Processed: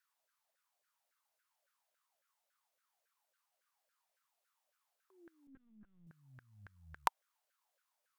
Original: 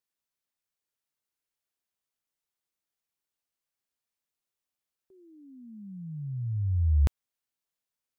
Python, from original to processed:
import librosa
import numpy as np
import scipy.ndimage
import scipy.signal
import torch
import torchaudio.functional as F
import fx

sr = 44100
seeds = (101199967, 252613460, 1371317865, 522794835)

y = fx.cheby_harmonics(x, sr, harmonics=(2,), levels_db=(-17,), full_scale_db=-16.0)
y = fx.filter_lfo_highpass(y, sr, shape='saw_down', hz=3.6, low_hz=520.0, high_hz=1600.0, q=7.9)
y = fx.lpc_vocoder(y, sr, seeds[0], excitation='pitch_kept', order=10, at=(5.47, 6.07))
y = y * 10.0 ** (2.0 / 20.0)